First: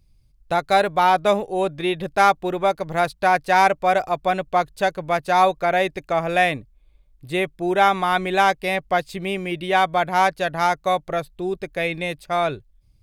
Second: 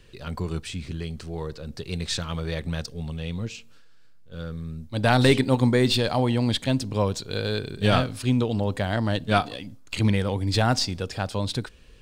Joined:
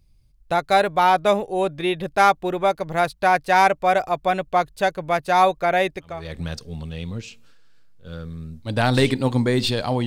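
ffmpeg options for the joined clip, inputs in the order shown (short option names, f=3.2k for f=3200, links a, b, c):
-filter_complex "[0:a]apad=whole_dur=10.06,atrim=end=10.06,atrim=end=6.37,asetpts=PTS-STARTPTS[a];[1:a]atrim=start=2.2:end=6.33,asetpts=PTS-STARTPTS[b];[a][b]acrossfade=d=0.44:c1=qua:c2=qua"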